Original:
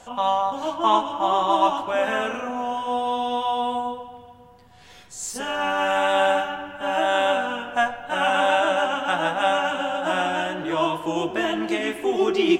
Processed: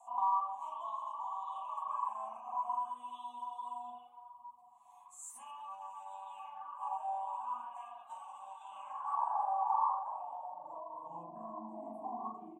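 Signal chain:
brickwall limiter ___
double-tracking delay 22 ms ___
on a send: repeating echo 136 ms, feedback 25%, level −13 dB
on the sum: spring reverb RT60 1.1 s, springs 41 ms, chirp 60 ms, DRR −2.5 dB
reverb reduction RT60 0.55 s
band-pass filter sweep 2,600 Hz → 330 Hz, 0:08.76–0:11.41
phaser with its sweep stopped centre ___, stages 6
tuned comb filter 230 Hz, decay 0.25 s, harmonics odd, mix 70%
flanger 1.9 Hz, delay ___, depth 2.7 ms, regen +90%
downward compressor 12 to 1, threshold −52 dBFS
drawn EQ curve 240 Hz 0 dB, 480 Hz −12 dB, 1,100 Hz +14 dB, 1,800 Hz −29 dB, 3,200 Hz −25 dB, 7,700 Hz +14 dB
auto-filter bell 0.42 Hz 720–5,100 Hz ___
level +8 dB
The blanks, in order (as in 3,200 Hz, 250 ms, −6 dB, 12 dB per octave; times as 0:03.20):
−17 dBFS, −14 dB, 1,400 Hz, 6.3 ms, +13 dB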